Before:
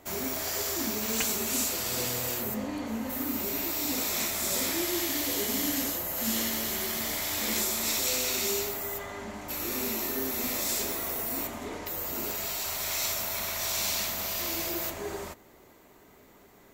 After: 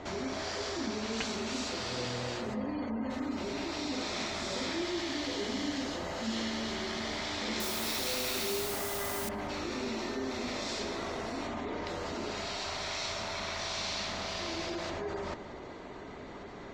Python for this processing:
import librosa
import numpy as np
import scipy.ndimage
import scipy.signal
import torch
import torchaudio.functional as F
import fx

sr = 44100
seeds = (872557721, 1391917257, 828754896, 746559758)

p1 = fx.spec_gate(x, sr, threshold_db=-30, keep='strong')
p2 = scipy.signal.sosfilt(scipy.signal.butter(4, 5000.0, 'lowpass', fs=sr, output='sos'), p1)
p3 = fx.peak_eq(p2, sr, hz=2500.0, db=-3.0, octaves=0.77)
p4 = fx.over_compress(p3, sr, threshold_db=-47.0, ratio=-1.0)
p5 = p3 + F.gain(torch.from_numpy(p4), 2.0).numpy()
p6 = fx.quant_dither(p5, sr, seeds[0], bits=6, dither='triangular', at=(7.6, 9.29))
p7 = p6 + fx.echo_filtered(p6, sr, ms=187, feedback_pct=51, hz=2700.0, wet_db=-14.0, dry=0)
y = F.gain(torch.from_numpy(p7), -3.0).numpy()